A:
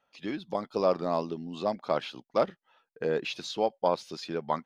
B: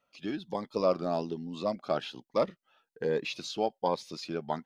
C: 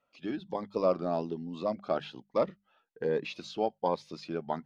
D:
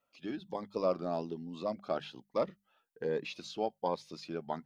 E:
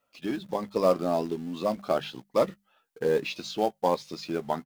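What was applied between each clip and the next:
cascading phaser rising 1.2 Hz
LPF 2400 Hz 6 dB/oct; notches 50/100/150/200 Hz
high shelf 6200 Hz +9.5 dB; gain -4 dB
in parallel at -9.5 dB: companded quantiser 4-bit; on the sum: doubler 15 ms -12.5 dB; gain +5.5 dB

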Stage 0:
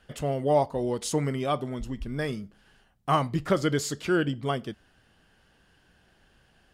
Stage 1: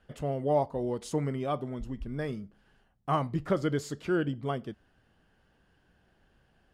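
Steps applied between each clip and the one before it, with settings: high shelf 2000 Hz -9 dB; gain -3 dB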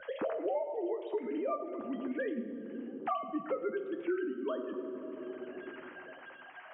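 sine-wave speech; reverb RT60 1.7 s, pre-delay 9 ms, DRR 3.5 dB; three-band squash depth 100%; gain -5.5 dB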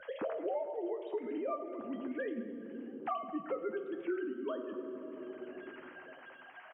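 feedback echo 0.218 s, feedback 57%, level -18.5 dB; gain -2.5 dB

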